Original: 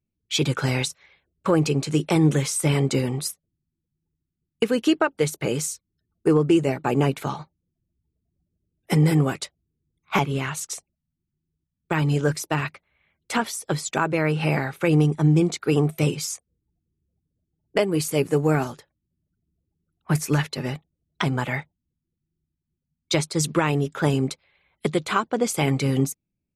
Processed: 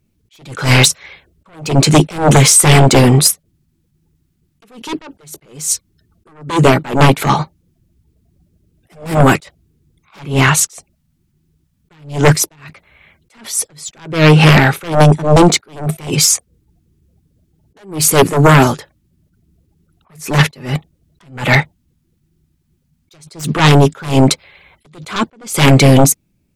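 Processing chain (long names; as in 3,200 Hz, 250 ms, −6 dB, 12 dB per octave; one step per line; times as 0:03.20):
sine wavefolder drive 12 dB, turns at −6.5 dBFS
level that may rise only so fast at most 140 dB per second
level +4 dB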